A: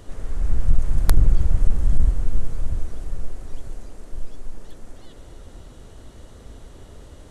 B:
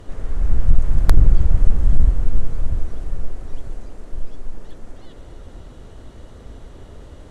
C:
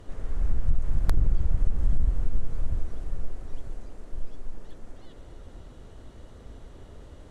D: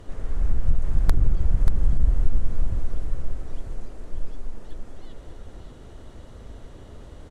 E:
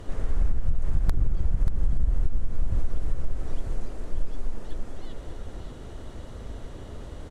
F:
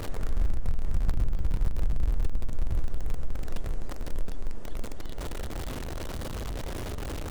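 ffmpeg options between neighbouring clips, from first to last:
ffmpeg -i in.wav -af "aemphasis=mode=reproduction:type=cd,volume=3dB" out.wav
ffmpeg -i in.wav -af "acompressor=threshold=-8dB:ratio=6,volume=-6.5dB" out.wav
ffmpeg -i in.wav -af "aecho=1:1:585:0.398,volume=3dB" out.wav
ffmpeg -i in.wav -af "acompressor=threshold=-19dB:ratio=12,volume=3.5dB" out.wav
ffmpeg -i in.wav -af "aeval=exprs='val(0)+0.5*0.0473*sgn(val(0))':channel_layout=same,volume=-4dB" out.wav

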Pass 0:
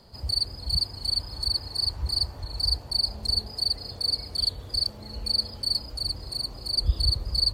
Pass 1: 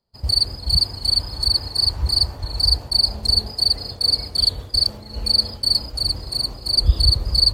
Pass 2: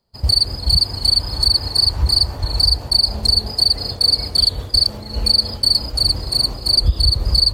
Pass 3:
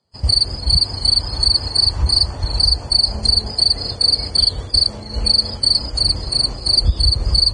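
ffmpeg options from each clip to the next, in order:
ffmpeg -i in.wav -af "agate=range=-33dB:threshold=-34dB:ratio=3:detection=peak,volume=8dB" out.wav
ffmpeg -i in.wav -af "acompressor=threshold=-17dB:ratio=6,volume=6.5dB" out.wav
ffmpeg -i in.wav -ar 22050 -c:a libvorbis -b:a 16k out.ogg

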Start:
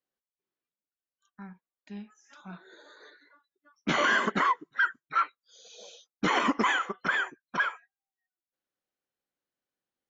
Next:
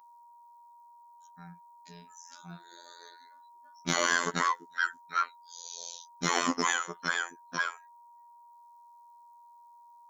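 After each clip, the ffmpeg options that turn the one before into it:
ffmpeg -i in.wav -af "aeval=exprs='val(0)+0.00251*sin(2*PI*940*n/s)':channel_layout=same,afftfilt=real='hypot(re,im)*cos(PI*b)':imag='0':win_size=2048:overlap=0.75,aexciter=amount=3.5:drive=8.5:freq=4100" out.wav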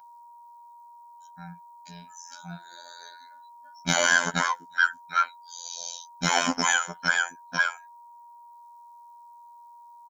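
ffmpeg -i in.wav -af "aecho=1:1:1.3:0.75,volume=3.5dB" out.wav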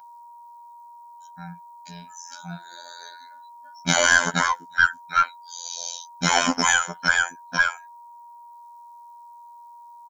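ffmpeg -i in.wav -af "aeval=exprs='0.562*(cos(1*acos(clip(val(0)/0.562,-1,1)))-cos(1*PI/2))+0.0224*(cos(4*acos(clip(val(0)/0.562,-1,1)))-cos(4*PI/2))':channel_layout=same,volume=4dB" out.wav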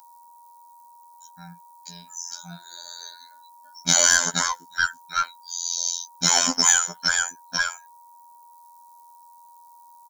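ffmpeg -i in.wav -af "aexciter=amount=4.6:drive=4.4:freq=3800,volume=-5dB" out.wav

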